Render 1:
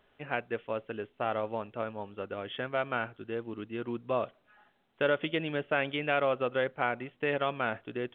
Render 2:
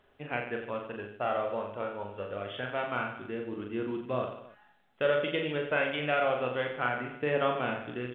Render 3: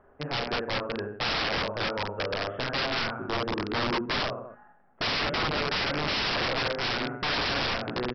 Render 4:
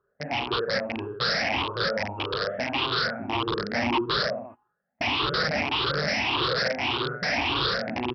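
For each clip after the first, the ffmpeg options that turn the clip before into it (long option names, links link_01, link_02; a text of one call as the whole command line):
ffmpeg -i in.wav -filter_complex "[0:a]aphaser=in_gain=1:out_gain=1:delay=2.2:decay=0.31:speed=0.27:type=triangular,asplit=2[link_01][link_02];[link_02]aecho=0:1:40|88|145.6|214.7|297.7:0.631|0.398|0.251|0.158|0.1[link_03];[link_01][link_03]amix=inputs=2:normalize=0,volume=-2dB" out.wav
ffmpeg -i in.wav -af "lowpass=frequency=1500:width=0.5412,lowpass=frequency=1500:width=1.3066,bandreject=frequency=60.76:width_type=h:width=4,bandreject=frequency=121.52:width_type=h:width=4,bandreject=frequency=182.28:width_type=h:width=4,bandreject=frequency=243.04:width_type=h:width=4,bandreject=frequency=303.8:width_type=h:width=4,bandreject=frequency=364.56:width_type=h:width=4,bandreject=frequency=425.32:width_type=h:width=4,bandreject=frequency=486.08:width_type=h:width=4,aresample=11025,aeval=exprs='(mod(35.5*val(0)+1,2)-1)/35.5':channel_layout=same,aresample=44100,volume=8dB" out.wav
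ffmpeg -i in.wav -af "afftfilt=real='re*pow(10,19/40*sin(2*PI*(0.62*log(max(b,1)*sr/1024/100)/log(2)-(1.7)*(pts-256)/sr)))':imag='im*pow(10,19/40*sin(2*PI*(0.62*log(max(b,1)*sr/1024/100)/log(2)-(1.7)*(pts-256)/sr)))':win_size=1024:overlap=0.75,highpass=58,agate=range=-18dB:threshold=-42dB:ratio=16:detection=peak,volume=-1.5dB" out.wav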